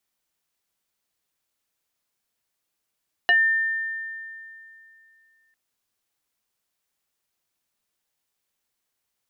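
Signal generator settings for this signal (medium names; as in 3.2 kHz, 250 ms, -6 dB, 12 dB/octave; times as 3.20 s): FM tone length 2.25 s, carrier 1.8 kHz, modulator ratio 0.61, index 1.2, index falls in 0.14 s exponential, decay 2.68 s, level -13.5 dB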